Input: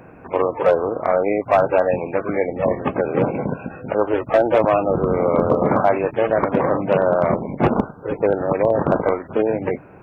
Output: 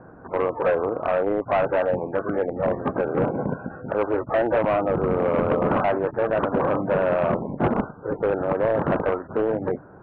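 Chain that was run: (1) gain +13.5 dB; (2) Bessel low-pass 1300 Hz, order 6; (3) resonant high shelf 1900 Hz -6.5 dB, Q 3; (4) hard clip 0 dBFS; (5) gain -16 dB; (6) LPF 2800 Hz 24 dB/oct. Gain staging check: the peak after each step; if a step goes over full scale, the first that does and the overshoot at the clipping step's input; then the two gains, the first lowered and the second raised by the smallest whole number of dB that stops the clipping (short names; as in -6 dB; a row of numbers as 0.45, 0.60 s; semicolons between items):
+7.0, +7.0, +9.0, 0.0, -16.0, -14.5 dBFS; step 1, 9.0 dB; step 1 +4.5 dB, step 5 -7 dB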